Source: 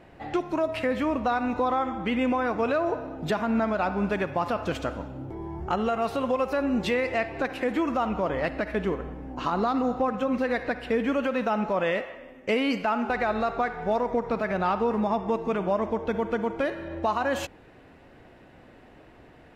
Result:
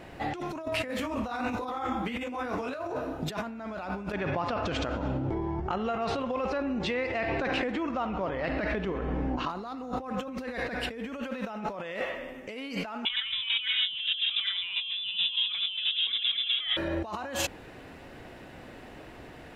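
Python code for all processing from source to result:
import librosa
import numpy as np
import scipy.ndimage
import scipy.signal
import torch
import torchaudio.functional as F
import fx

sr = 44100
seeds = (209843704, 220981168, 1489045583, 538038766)

y = fx.chain(x, sr, fx.high_shelf(hz=6300.0, db=6.5),
    fx.detune_double(cents=53), at=(0.88, 3.23))
y = fx.chain(y, sr, fx.over_compress(threshold_db=-31.0, ratio=-1.0),
    fx.gaussian_blur(sigma=1.6), at=(4.12, 9.5))
y = fx.chain(y, sr, fx.freq_invert(carrier_hz=3700),
    fx.peak_eq(hz=590.0, db=-6.0, octaves=0.21), at=(13.05, 16.77))
y = fx.over_compress(y, sr, threshold_db=-34.0, ratio=-1.0)
y = fx.high_shelf(y, sr, hz=3100.0, db=7.5)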